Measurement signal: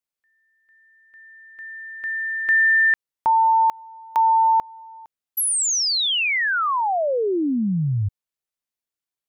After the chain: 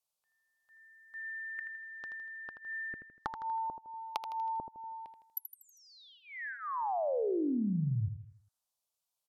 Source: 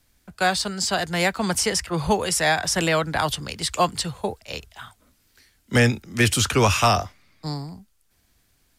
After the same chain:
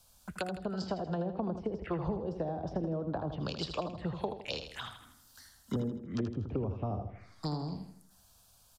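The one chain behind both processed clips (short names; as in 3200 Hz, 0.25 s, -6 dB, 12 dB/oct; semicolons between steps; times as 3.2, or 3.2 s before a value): treble ducked by the level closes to 360 Hz, closed at -18.5 dBFS; low shelf 180 Hz -8 dB; compressor 12:1, threshold -35 dBFS; envelope phaser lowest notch 310 Hz, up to 2100 Hz, full sweep at -37 dBFS; on a send: feedback echo 80 ms, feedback 45%, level -8.5 dB; on the sum: gain +4.5 dB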